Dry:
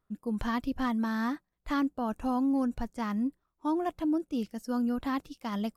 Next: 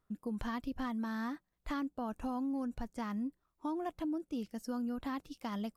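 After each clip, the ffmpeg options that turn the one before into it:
-af "acompressor=threshold=-38dB:ratio=2.5"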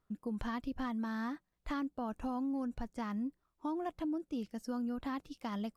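-af "highshelf=f=9.4k:g=-7.5"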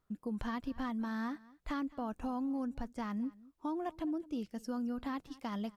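-af "aecho=1:1:215:0.0841"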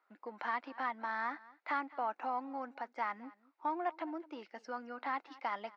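-filter_complex "[0:a]asplit=2[a][b];[b]asoftclip=type=hard:threshold=-37.5dB,volume=-11.5dB[c];[a][c]amix=inputs=2:normalize=0,highpass=f=390:w=0.5412,highpass=f=390:w=1.3066,equalizer=f=440:t=q:w=4:g=-6,equalizer=f=850:t=q:w=4:g=8,equalizer=f=1.4k:t=q:w=4:g=6,equalizer=f=2.1k:t=q:w=4:g=8,equalizer=f=3.3k:t=q:w=4:g=-6,lowpass=f=4.3k:w=0.5412,lowpass=f=4.3k:w=1.3066,volume=1dB"

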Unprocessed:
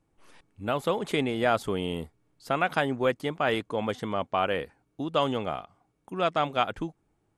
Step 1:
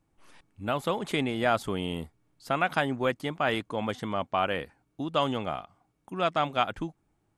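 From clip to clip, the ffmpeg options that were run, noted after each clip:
-af "equalizer=f=450:t=o:w=0.55:g=-4.5"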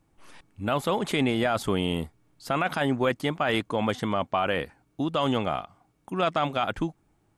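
-af "alimiter=limit=-20.5dB:level=0:latency=1:release=11,volume=5.5dB"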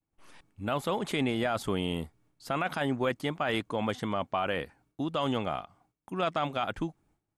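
-af "agate=range=-33dB:threshold=-57dB:ratio=3:detection=peak,volume=-4.5dB"

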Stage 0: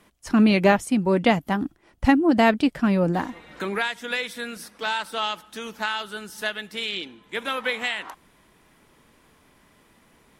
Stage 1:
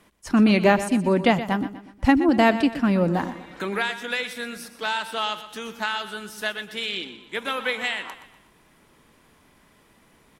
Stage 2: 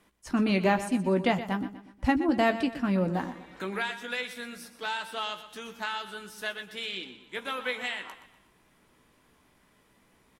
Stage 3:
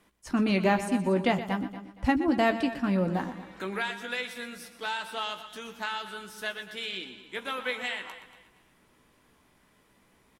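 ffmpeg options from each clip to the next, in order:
-af "aecho=1:1:122|244|366|488:0.224|0.094|0.0395|0.0166"
-filter_complex "[0:a]asplit=2[a][b];[b]adelay=16,volume=-9dB[c];[a][c]amix=inputs=2:normalize=0,volume=-7dB"
-af "aecho=1:1:234|468|702:0.158|0.0507|0.0162"

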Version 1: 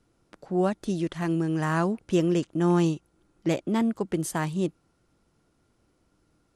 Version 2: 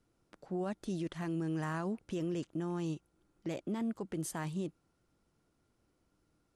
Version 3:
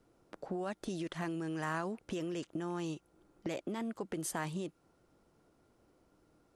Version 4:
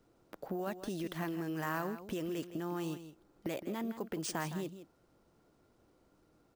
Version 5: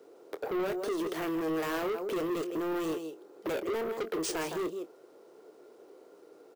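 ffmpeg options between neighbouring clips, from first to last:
-af "alimiter=limit=-21.5dB:level=0:latency=1:release=26,volume=-7.5dB"
-filter_complex "[0:a]equalizer=f=570:t=o:w=2.4:g=8,acrossover=split=1300[a][b];[a]acompressor=threshold=-39dB:ratio=6[c];[c][b]amix=inputs=2:normalize=0,volume=2.5dB"
-af "acrusher=samples=3:mix=1:aa=0.000001,aecho=1:1:163:0.251"
-filter_complex "[0:a]highpass=f=420:t=q:w=4.9,asoftclip=type=tanh:threshold=-38.5dB,asplit=2[a][b];[b]adelay=25,volume=-12dB[c];[a][c]amix=inputs=2:normalize=0,volume=8.5dB"

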